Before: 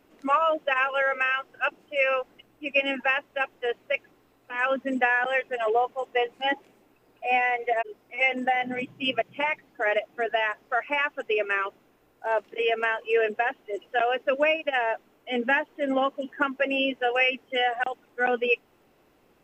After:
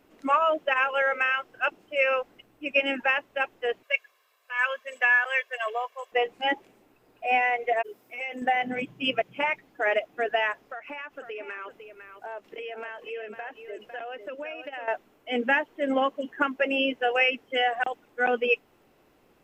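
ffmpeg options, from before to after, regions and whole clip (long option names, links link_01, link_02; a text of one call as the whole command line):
ffmpeg -i in.wav -filter_complex "[0:a]asettb=1/sr,asplit=3[link_01][link_02][link_03];[link_01]atrim=end=3.834[link_04];[link_02]atrim=start=3.83:end=6.12,asetpts=PTS-STARTPTS,afade=type=in:duration=0.004:curve=qsin,afade=type=out:start_time=2.286:duration=0.004:curve=qsin,highpass=1100,aecho=1:1:1.8:0.83,atrim=end_sample=100989[link_05];[link_03]atrim=start=6.116[link_06];[link_04][link_05]acrossfade=duration=0.004:curve1=hsin:curve2=qsin[link_07];[link_07][link_06]acrossfade=duration=0.004:curve1=qsin:curve2=hsin,asettb=1/sr,asplit=3[link_08][link_09][link_10];[link_08]atrim=end=7.834[link_11];[link_09]atrim=start=7.83:end=8.42,asetpts=PTS-STARTPTS,afade=type=in:duration=0.004:curve=qsin,afade=type=out:start_time=0.586:duration=0.004:curve=qsin,highpass=100,highshelf=frequency=6800:gain=12,acompressor=threshold=-36dB:ratio=2.5:attack=3.2:release=140:knee=1:detection=peak[link_12];[link_10]atrim=start=8.416[link_13];[link_11][link_12]acrossfade=duration=0.004:curve1=hsin:curve2=qsin[link_14];[link_14][link_13]acrossfade=duration=0.004:curve1=qsin:curve2=hsin,asettb=1/sr,asplit=3[link_15][link_16][link_17];[link_15]atrim=end=10.624[link_18];[link_16]atrim=start=10.62:end=14.88,asetpts=PTS-STARTPTS,afade=type=in:duration=0.004:curve=qsin,afade=type=out:start_time=4.256:duration=0.004:curve=qsin,acompressor=threshold=-35dB:ratio=5:attack=3.2:release=140:knee=1:detection=peak,aecho=1:1:503:0.355,atrim=end_sample=187866[link_19];[link_17]atrim=start=14.876[link_20];[link_18][link_19]acrossfade=duration=0.004:curve1=hsin:curve2=qsin[link_21];[link_21][link_20]acrossfade=duration=0.004:curve1=qsin:curve2=hsin" out.wav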